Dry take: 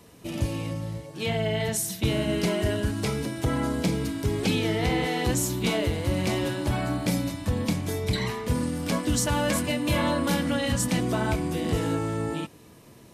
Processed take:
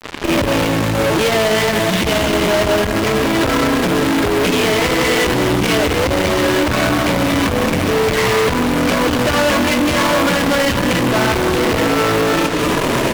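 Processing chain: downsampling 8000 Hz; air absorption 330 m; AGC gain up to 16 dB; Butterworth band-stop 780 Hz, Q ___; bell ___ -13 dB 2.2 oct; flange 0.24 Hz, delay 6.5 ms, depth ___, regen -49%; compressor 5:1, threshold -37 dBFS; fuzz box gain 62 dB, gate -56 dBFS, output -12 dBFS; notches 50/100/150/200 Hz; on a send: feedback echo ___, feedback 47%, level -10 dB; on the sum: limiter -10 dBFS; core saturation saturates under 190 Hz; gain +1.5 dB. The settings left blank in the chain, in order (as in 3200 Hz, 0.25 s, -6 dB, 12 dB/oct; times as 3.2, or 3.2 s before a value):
4.5, 120 Hz, 4.2 ms, 0.187 s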